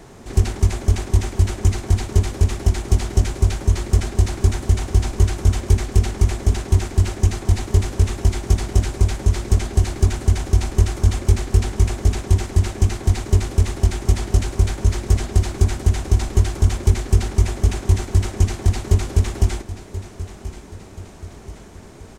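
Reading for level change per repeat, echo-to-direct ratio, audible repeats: −6.0 dB, −13.5 dB, 3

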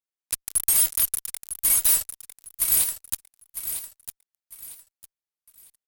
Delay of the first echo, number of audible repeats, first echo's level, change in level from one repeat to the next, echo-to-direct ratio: 953 ms, 3, −10.0 dB, −10.5 dB, −9.5 dB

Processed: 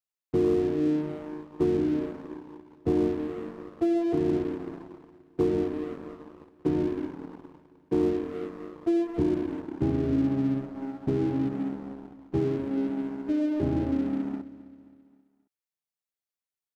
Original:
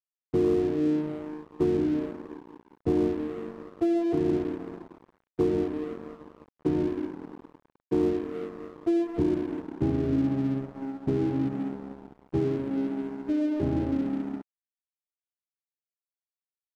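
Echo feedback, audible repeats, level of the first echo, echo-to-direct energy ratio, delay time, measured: 50%, 3, −18.0 dB, −17.0 dB, 265 ms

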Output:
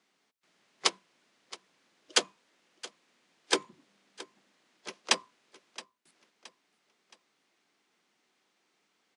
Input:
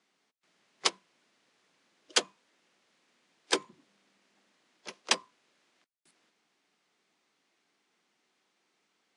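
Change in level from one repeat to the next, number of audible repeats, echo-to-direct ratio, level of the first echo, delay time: −7.5 dB, 3, −17.5 dB, −18.5 dB, 671 ms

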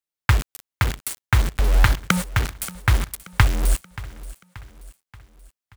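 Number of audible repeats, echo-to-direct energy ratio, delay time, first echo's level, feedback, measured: 3, −17.0 dB, 580 ms, −18.0 dB, 50%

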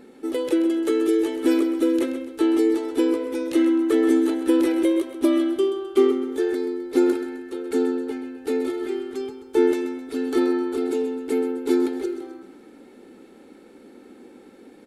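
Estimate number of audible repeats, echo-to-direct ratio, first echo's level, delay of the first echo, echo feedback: 4, −10.5 dB, −11.5 dB, 130 ms, 45%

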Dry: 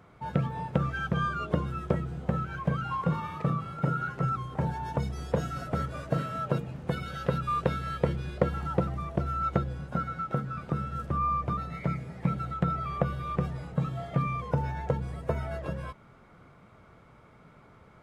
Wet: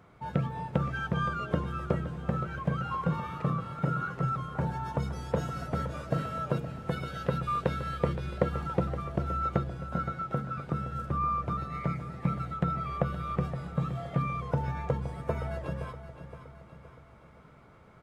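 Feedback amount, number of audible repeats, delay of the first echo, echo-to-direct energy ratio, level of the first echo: 49%, 4, 519 ms, −11.0 dB, −12.0 dB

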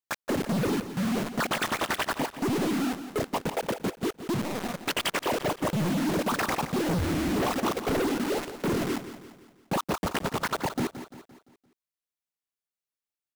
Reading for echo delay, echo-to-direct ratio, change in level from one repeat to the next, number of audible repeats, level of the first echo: 172 ms, −11.0 dB, −6.5 dB, 4, −12.0 dB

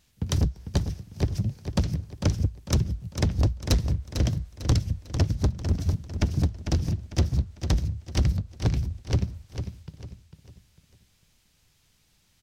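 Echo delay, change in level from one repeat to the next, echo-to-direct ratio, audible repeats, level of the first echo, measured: 449 ms, −9.0 dB, −8.0 dB, 3, −8.5 dB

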